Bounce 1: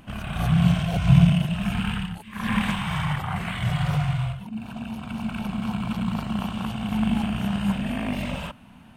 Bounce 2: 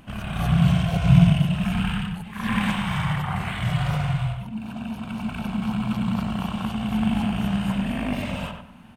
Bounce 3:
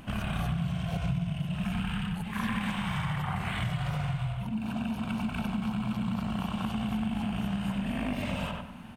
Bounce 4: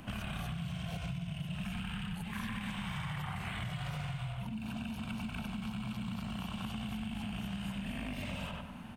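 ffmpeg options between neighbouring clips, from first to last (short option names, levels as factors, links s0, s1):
-filter_complex "[0:a]asplit=2[s0][s1];[s1]adelay=96,lowpass=f=2400:p=1,volume=0.562,asplit=2[s2][s3];[s3]adelay=96,lowpass=f=2400:p=1,volume=0.33,asplit=2[s4][s5];[s5]adelay=96,lowpass=f=2400:p=1,volume=0.33,asplit=2[s6][s7];[s7]adelay=96,lowpass=f=2400:p=1,volume=0.33[s8];[s0][s2][s4][s6][s8]amix=inputs=5:normalize=0"
-af "acompressor=threshold=0.0316:ratio=8,volume=1.26"
-filter_complex "[0:a]acrossover=split=150|1900[s0][s1][s2];[s0]acompressor=threshold=0.01:ratio=4[s3];[s1]acompressor=threshold=0.00891:ratio=4[s4];[s2]acompressor=threshold=0.00708:ratio=4[s5];[s3][s4][s5]amix=inputs=3:normalize=0,volume=0.841"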